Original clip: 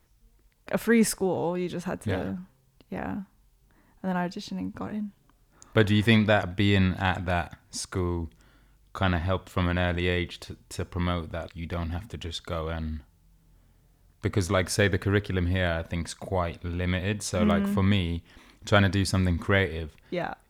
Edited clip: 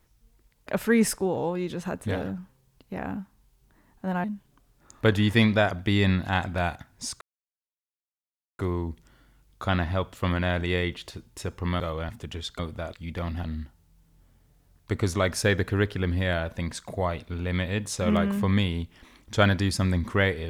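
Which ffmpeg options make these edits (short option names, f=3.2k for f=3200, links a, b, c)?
-filter_complex "[0:a]asplit=7[a][b][c][d][e][f][g];[a]atrim=end=4.242[h];[b]atrim=start=4.958:end=7.93,asetpts=PTS-STARTPTS,afade=t=out:st=2.968:d=0.004:c=hsin,apad=pad_dur=1.38[i];[c]atrim=start=7.93:end=11.142,asetpts=PTS-STARTPTS,afade=t=in:d=0.004:c=hsin[j];[d]atrim=start=12.488:end=12.782[k];[e]atrim=start=11.988:end=12.492[l];[f]atrim=start=11.138:end=11.992[m];[g]atrim=start=12.778[n];[i][j]concat=n=2:v=0:a=1[o];[h][o]acrossfade=d=0.004:c1=hsin:c2=hsin[p];[p][k]acrossfade=d=0.004:c1=hsin:c2=hsin[q];[q][l]acrossfade=d=0.004:c1=hsin:c2=hsin[r];[r][m]acrossfade=d=0.004:c1=hsin:c2=hsin[s];[s][n]acrossfade=d=0.004:c1=hsin:c2=hsin"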